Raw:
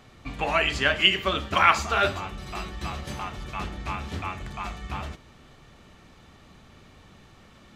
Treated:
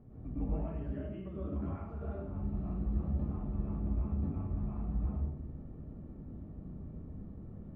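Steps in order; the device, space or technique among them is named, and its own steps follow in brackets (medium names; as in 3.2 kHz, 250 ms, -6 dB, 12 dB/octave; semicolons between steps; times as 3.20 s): television next door (compression 4:1, threshold -38 dBFS, peak gain reduction 21 dB; low-pass 310 Hz 12 dB/octave; reverberation RT60 0.75 s, pre-delay 99 ms, DRR -7 dB)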